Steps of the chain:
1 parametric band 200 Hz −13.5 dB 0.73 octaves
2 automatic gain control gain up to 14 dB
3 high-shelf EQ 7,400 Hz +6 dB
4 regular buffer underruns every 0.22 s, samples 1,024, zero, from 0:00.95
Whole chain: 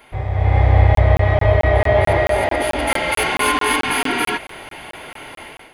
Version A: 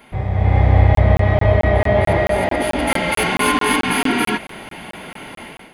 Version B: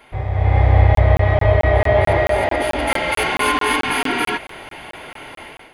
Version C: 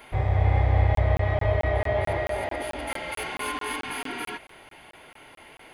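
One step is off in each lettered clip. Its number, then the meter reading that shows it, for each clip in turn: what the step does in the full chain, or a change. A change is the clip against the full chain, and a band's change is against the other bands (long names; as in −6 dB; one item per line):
1, 250 Hz band +6.0 dB
3, 8 kHz band −4.0 dB
2, change in momentary loudness spread −10 LU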